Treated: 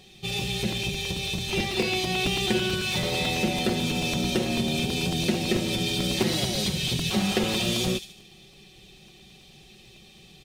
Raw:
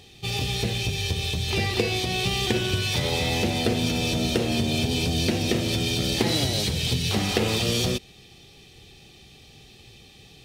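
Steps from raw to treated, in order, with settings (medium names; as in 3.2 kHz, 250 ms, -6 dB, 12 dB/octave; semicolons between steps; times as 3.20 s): peaking EQ 200 Hz +4 dB 0.22 oct; comb 5.4 ms, depth 68%; on a send: feedback echo behind a high-pass 73 ms, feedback 46%, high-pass 3.4 kHz, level -7.5 dB; on the sum: crackling interface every 0.11 s, samples 128, repeat, from 0.72 s; trim -3.5 dB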